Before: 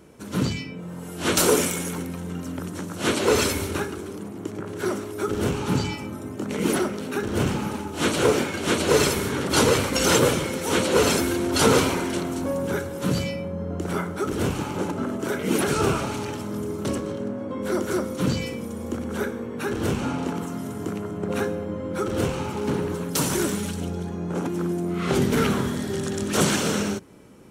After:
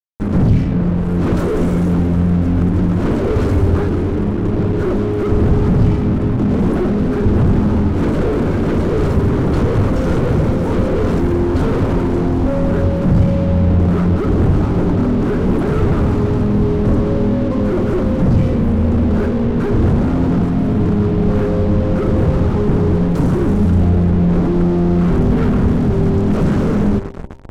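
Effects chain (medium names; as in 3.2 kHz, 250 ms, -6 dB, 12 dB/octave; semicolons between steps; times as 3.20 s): high-order bell 5.2 kHz -9 dB 3 oct; band-stop 860 Hz, Q 27; multi-head delay 130 ms, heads first and third, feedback 64%, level -23 dB; fuzz box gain 43 dB, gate -38 dBFS; reverse; upward compressor, threshold -27 dBFS; reverse; tilt EQ -4.5 dB/octave; de-hum 65.9 Hz, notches 15; loudspeaker Doppler distortion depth 0.13 ms; trim -8 dB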